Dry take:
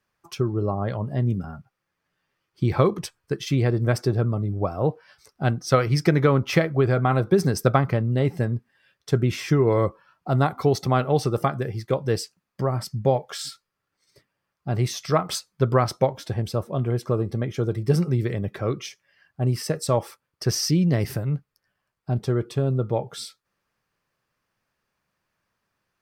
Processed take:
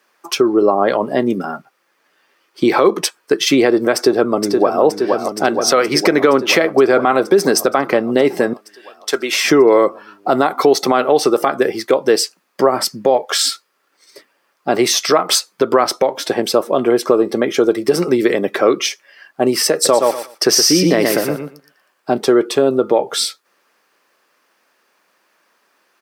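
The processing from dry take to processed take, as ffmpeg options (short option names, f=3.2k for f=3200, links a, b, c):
-filter_complex "[0:a]asplit=2[a][b];[b]afade=t=in:st=3.95:d=0.01,afade=t=out:st=4.81:d=0.01,aecho=0:1:470|940|1410|1880|2350|2820|3290|3760|4230|4700|5170|5640:0.421697|0.337357|0.269886|0.215909|0.172727|0.138182|0.110545|0.0884362|0.0707489|0.0565991|0.0452793|0.0362235[c];[a][c]amix=inputs=2:normalize=0,asettb=1/sr,asplit=3[d][e][f];[d]atrim=end=8.534[g];[e]atrim=start=8.53:end=9.45,asetpts=PTS-STARTPTS,afade=t=in:d=0.004:c=qsin,afade=t=out:st=0.916:d=0.004:c=qsin,highpass=f=1.5k:p=1[h];[f]atrim=start=9.446[i];[g][h]acrossfade=d=0.004:c1=hsin:c2=qsin[j];[j][i]acrossfade=d=0.004:c1=qsin:c2=hsin,asplit=3[k][l][m];[k]afade=t=out:st=19.84:d=0.02[n];[l]aecho=1:1:118|236|354:0.501|0.0802|0.0128,afade=t=in:st=19.84:d=0.02,afade=t=out:st=22.12:d=0.02[o];[m]afade=t=in:st=22.12:d=0.02[p];[n][o][p]amix=inputs=3:normalize=0,highpass=f=280:w=0.5412,highpass=f=280:w=1.3066,acompressor=threshold=-26dB:ratio=2.5,alimiter=level_in=18.5dB:limit=-1dB:release=50:level=0:latency=1,volume=-1dB"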